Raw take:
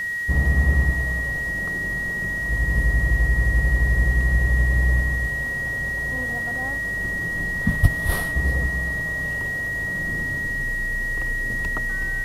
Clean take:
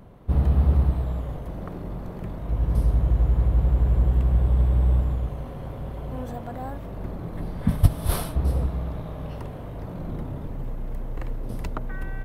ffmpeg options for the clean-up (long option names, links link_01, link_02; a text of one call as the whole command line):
ffmpeg -i in.wav -af "adeclick=threshold=4,bandreject=frequency=1900:width=30,afwtdn=0.005" out.wav